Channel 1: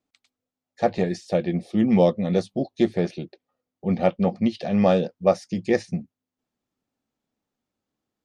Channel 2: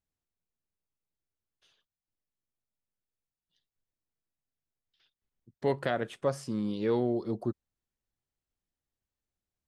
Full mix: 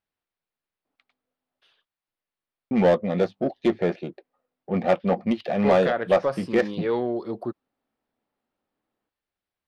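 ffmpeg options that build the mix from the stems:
-filter_complex "[0:a]adynamicsmooth=sensitivity=3.5:basefreq=1900,adelay=850,volume=0.708,asplit=3[s0][s1][s2];[s0]atrim=end=1.61,asetpts=PTS-STARTPTS,afade=t=out:st=1.606:d=0.004:c=hsin[s3];[s1]atrim=start=1.61:end=2.71,asetpts=PTS-STARTPTS,volume=0[s4];[s2]atrim=start=2.71,asetpts=PTS-STARTPTS,afade=t=in:d=0.004:c=hsin[s5];[s3][s4][s5]concat=n=3:v=0:a=1[s6];[1:a]equalizer=f=6700:t=o:w=0.45:g=-13,volume=0.841[s7];[s6][s7]amix=inputs=2:normalize=0,asplit=2[s8][s9];[s9]highpass=f=720:p=1,volume=6.31,asoftclip=type=tanh:threshold=0.376[s10];[s8][s10]amix=inputs=2:normalize=0,lowpass=f=2700:p=1,volume=0.501"

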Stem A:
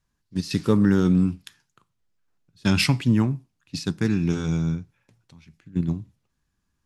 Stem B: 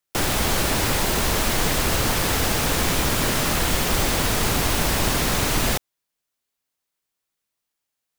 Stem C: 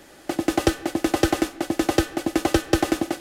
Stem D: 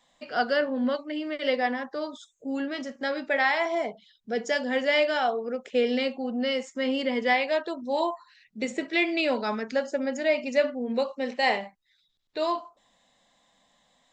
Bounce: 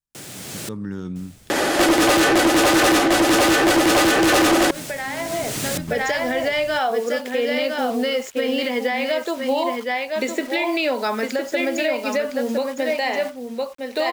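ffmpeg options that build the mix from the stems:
-filter_complex "[0:a]volume=0.1[s0];[1:a]equalizer=f=125:t=o:w=1:g=10,equalizer=f=1000:t=o:w=1:g=-7,equalizer=f=8000:t=o:w=1:g=6,volume=0.168,asplit=3[s1][s2][s3];[s1]atrim=end=0.69,asetpts=PTS-STARTPTS,afade=t=out:st=0.686:d=0.004:c=hsin[s4];[s2]atrim=start=0.69:end=3.24,asetpts=PTS-STARTPTS,volume=0[s5];[s3]atrim=start=3.24,asetpts=PTS-STARTPTS,afade=t=in:d=0.004:c=hsin[s6];[s4][s5][s6]concat=n=3:v=0:a=1,asplit=2[s7][s8];[s8]volume=0.0841[s9];[2:a]tiltshelf=f=970:g=4.5,asplit=2[s10][s11];[s11]highpass=f=720:p=1,volume=100,asoftclip=type=tanh:threshold=0.794[s12];[s10][s12]amix=inputs=2:normalize=0,lowpass=f=7500:p=1,volume=0.501,adelay=1500,volume=0.708[s13];[3:a]highpass=230,acrusher=bits=7:mix=0:aa=0.000001,adelay=1600,volume=0.708,asplit=2[s14][s15];[s15]volume=0.355[s16];[s7][s14]amix=inputs=2:normalize=0,highpass=190,acompressor=threshold=0.0316:ratio=6,volume=1[s17];[s9][s16]amix=inputs=2:normalize=0,aecho=0:1:1009:1[s18];[s0][s13][s17][s18]amix=inputs=4:normalize=0,dynaudnorm=f=110:g=13:m=4.22,alimiter=limit=0.251:level=0:latency=1:release=62"

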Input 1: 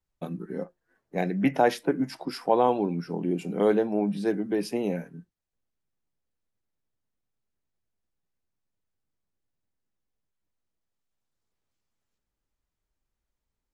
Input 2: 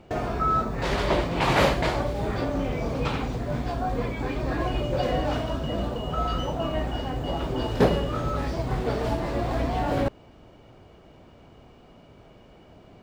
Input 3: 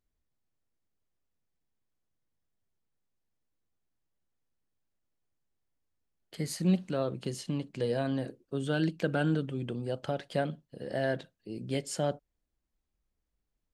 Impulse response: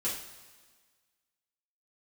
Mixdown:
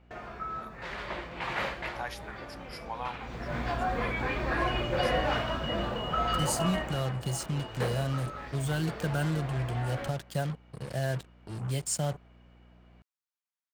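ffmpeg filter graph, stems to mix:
-filter_complex "[0:a]highpass=f=920:w=0.5412,highpass=f=920:w=1.3066,adelay=400,volume=0.422[s0];[1:a]equalizer=f=1800:t=o:w=2.2:g=12,aeval=exprs='val(0)+0.0112*(sin(2*PI*60*n/s)+sin(2*PI*2*60*n/s)/2+sin(2*PI*3*60*n/s)/3+sin(2*PI*4*60*n/s)/4+sin(2*PI*5*60*n/s)/5)':c=same,volume=0.422,afade=t=in:st=3.19:d=0.43:silence=0.237137,afade=t=out:st=6.54:d=0.6:silence=0.281838,asplit=2[s1][s2];[s2]volume=0.211[s3];[2:a]equalizer=f=125:t=o:w=1:g=11,equalizer=f=250:t=o:w=1:g=-10,equalizer=f=500:t=o:w=1:g=-6,equalizer=f=2000:t=o:w=1:g=-5,equalizer=f=4000:t=o:w=1:g=-3,equalizer=f=8000:t=o:w=1:g=8,acrossover=split=280|3000[s4][s5][s6];[s4]acompressor=threshold=0.0224:ratio=3[s7];[s7][s5][s6]amix=inputs=3:normalize=0,acrusher=bits=6:mix=0:aa=0.5,volume=1.26[s8];[3:a]atrim=start_sample=2205[s9];[s3][s9]afir=irnorm=-1:irlink=0[s10];[s0][s1][s8][s10]amix=inputs=4:normalize=0"

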